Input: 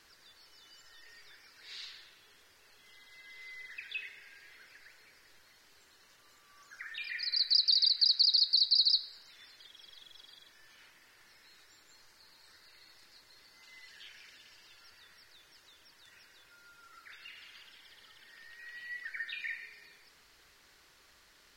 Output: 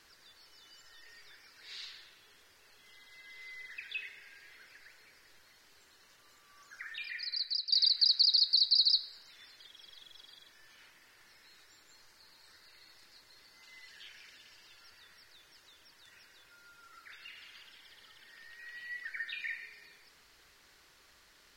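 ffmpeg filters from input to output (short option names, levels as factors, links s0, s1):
-filter_complex "[0:a]asplit=2[s0][s1];[s0]atrim=end=7.72,asetpts=PTS-STARTPTS,afade=t=out:st=6.88:d=0.84:silence=0.251189[s2];[s1]atrim=start=7.72,asetpts=PTS-STARTPTS,afade=t=in:d=0.004:c=hsin:silence=0.251189[s3];[s2][s3]concat=n=2:v=0:a=1"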